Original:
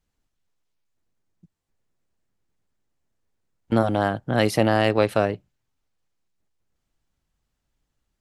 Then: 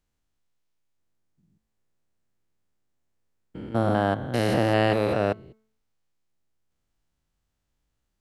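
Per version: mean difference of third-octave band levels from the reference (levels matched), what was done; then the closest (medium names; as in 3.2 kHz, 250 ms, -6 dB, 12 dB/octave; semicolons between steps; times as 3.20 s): 5.0 dB: spectrogram pixelated in time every 200 ms; de-hum 219 Hz, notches 10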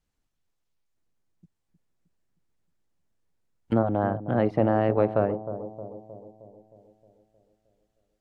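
6.5 dB: low-pass that closes with the level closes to 1.1 kHz, closed at -19.5 dBFS; bucket-brigade echo 311 ms, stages 2048, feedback 55%, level -11.5 dB; trim -2.5 dB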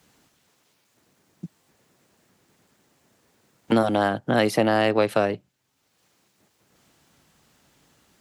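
2.0 dB: high-pass 150 Hz 12 dB/octave; three bands compressed up and down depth 70%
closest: third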